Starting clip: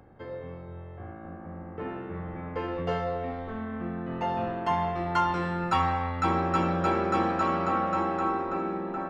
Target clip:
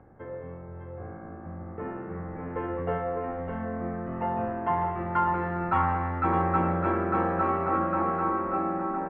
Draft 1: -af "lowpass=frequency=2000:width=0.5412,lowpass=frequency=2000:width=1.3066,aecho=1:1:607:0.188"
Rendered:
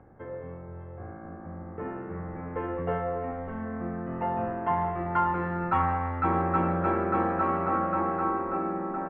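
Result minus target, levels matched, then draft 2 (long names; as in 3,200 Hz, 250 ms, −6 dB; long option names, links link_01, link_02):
echo-to-direct −8 dB
-af "lowpass=frequency=2000:width=0.5412,lowpass=frequency=2000:width=1.3066,aecho=1:1:607:0.473"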